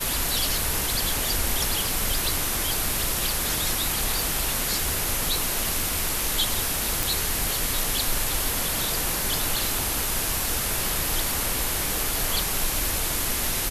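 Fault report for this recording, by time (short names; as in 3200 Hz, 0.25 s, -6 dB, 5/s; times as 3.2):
7.03 pop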